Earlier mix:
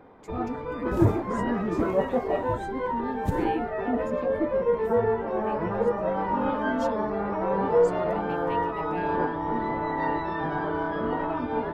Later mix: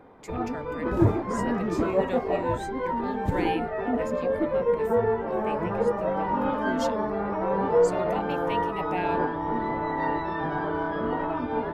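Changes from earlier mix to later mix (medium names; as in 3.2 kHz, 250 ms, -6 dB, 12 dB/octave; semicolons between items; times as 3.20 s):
speech +8.5 dB; second sound: add treble shelf 4.9 kHz -7.5 dB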